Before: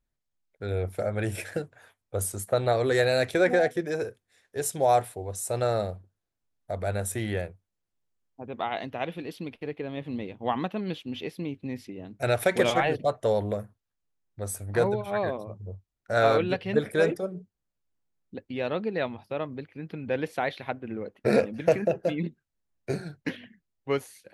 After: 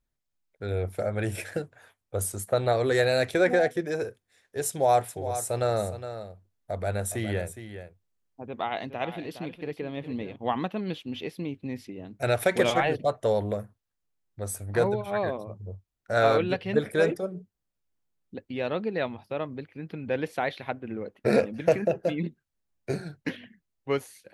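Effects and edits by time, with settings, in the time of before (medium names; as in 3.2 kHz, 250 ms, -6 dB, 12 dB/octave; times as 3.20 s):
4.67–10.36 s: delay 413 ms -11 dB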